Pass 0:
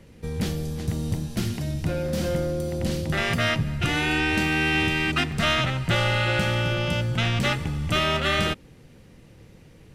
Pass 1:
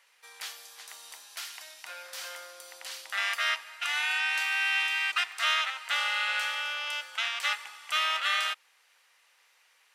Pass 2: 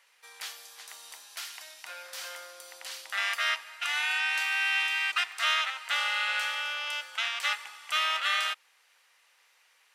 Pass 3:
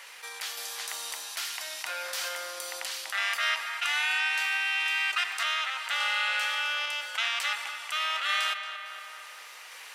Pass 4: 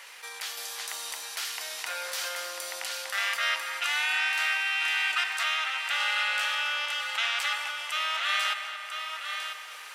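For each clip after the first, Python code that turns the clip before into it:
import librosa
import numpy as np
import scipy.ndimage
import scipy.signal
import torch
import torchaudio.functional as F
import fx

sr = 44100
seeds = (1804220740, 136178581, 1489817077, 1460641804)

y1 = scipy.signal.sosfilt(scipy.signal.butter(4, 970.0, 'highpass', fs=sr, output='sos'), x)
y1 = y1 * librosa.db_to_amplitude(-2.5)
y2 = y1
y3 = fx.tremolo_random(y2, sr, seeds[0], hz=3.5, depth_pct=55)
y3 = fx.echo_filtered(y3, sr, ms=228, feedback_pct=50, hz=3300.0, wet_db=-17.0)
y3 = fx.env_flatten(y3, sr, amount_pct=50)
y4 = y3 + 10.0 ** (-7.0 / 20.0) * np.pad(y3, (int(995 * sr / 1000.0), 0))[:len(y3)]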